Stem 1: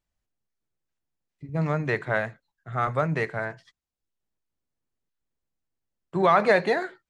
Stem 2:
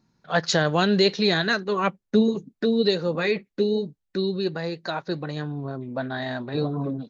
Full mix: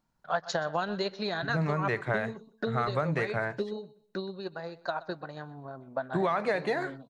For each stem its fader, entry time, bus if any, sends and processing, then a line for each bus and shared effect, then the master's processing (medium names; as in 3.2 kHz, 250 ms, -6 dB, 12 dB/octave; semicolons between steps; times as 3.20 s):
+1.0 dB, 0.00 s, no send, no echo send, none
-14.5 dB, 0.00 s, no send, echo send -19.5 dB, transient shaper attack +7 dB, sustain -3 dB; high-order bell 940 Hz +9.5 dB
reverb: none
echo: feedback delay 125 ms, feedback 27%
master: compression 6:1, threshold -25 dBFS, peak gain reduction 11.5 dB